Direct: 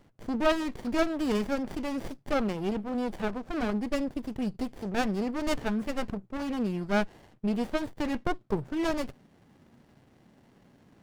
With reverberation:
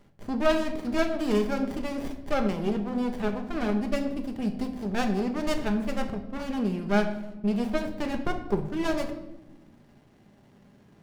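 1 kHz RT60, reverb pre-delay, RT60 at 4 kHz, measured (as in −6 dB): 0.85 s, 5 ms, 0.65 s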